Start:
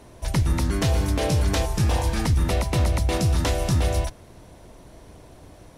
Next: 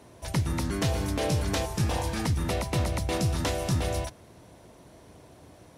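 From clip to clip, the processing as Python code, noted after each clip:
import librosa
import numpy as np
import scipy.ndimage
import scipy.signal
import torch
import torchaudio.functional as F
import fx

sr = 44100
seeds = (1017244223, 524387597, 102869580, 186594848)

y = scipy.signal.sosfilt(scipy.signal.butter(2, 84.0, 'highpass', fs=sr, output='sos'), x)
y = y * 10.0 ** (-3.5 / 20.0)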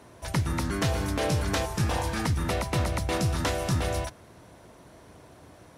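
y = fx.peak_eq(x, sr, hz=1400.0, db=5.0, octaves=1.1)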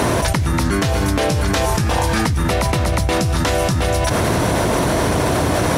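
y = fx.env_flatten(x, sr, amount_pct=100)
y = y * 10.0 ** (5.0 / 20.0)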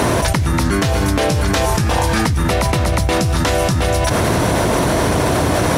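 y = fx.dmg_crackle(x, sr, seeds[0], per_s=12.0, level_db=-27.0)
y = y * 10.0 ** (1.5 / 20.0)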